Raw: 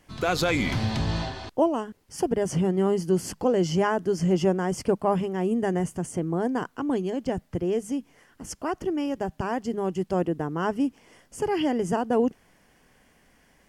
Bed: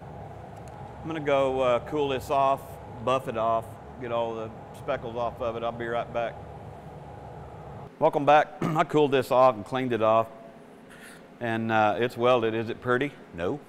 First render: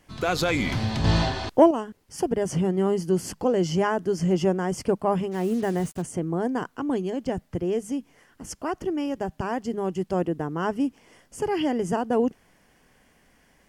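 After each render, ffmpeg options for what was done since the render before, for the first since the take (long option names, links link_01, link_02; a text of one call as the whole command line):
ffmpeg -i in.wav -filter_complex "[0:a]asettb=1/sr,asplit=3[link_01][link_02][link_03];[link_01]atrim=end=1.044[link_04];[link_02]atrim=start=1.04:end=1.71,asetpts=PTS-STARTPTS,afade=type=in:duration=0.004:curve=qsin,afade=type=out:start_time=0.666:duration=0.004:curve=qsin,acontrast=78[link_05];[link_03]atrim=start=1.706[link_06];[link_04][link_05]acrossfade=duration=0.004:curve1=hsin:curve2=qsin[link_07];[link_07][link_06]acrossfade=duration=0.004:curve1=qsin:curve2=hsin,asplit=3[link_08][link_09][link_10];[link_08]afade=type=out:start_time=5.31:duration=0.02[link_11];[link_09]acrusher=bits=6:mix=0:aa=0.5,afade=type=in:start_time=5.31:duration=0.02,afade=type=out:start_time=6.01:duration=0.02[link_12];[link_10]afade=type=in:start_time=6.01:duration=0.02[link_13];[link_11][link_12][link_13]amix=inputs=3:normalize=0" out.wav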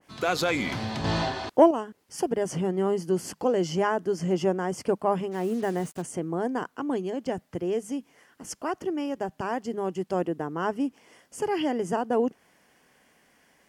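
ffmpeg -i in.wav -af "highpass=frequency=270:poles=1,adynamicequalizer=threshold=0.00891:dfrequency=1900:dqfactor=0.7:tfrequency=1900:tqfactor=0.7:attack=5:release=100:ratio=0.375:range=2:mode=cutabove:tftype=highshelf" out.wav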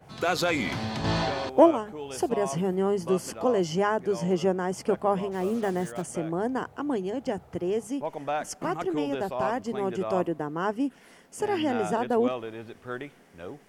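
ffmpeg -i in.wav -i bed.wav -filter_complex "[1:a]volume=-11dB[link_01];[0:a][link_01]amix=inputs=2:normalize=0" out.wav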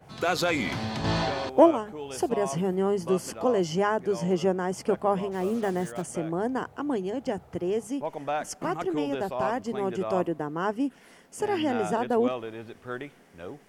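ffmpeg -i in.wav -af anull out.wav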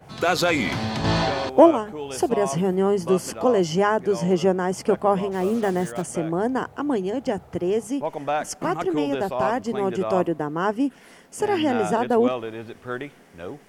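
ffmpeg -i in.wav -af "volume=5dB,alimiter=limit=-2dB:level=0:latency=1" out.wav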